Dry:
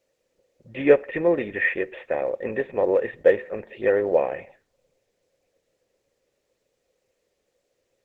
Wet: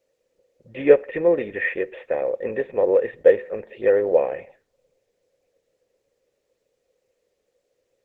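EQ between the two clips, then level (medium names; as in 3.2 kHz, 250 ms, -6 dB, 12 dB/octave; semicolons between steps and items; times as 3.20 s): peaking EQ 480 Hz +6 dB 0.51 oct; -2.0 dB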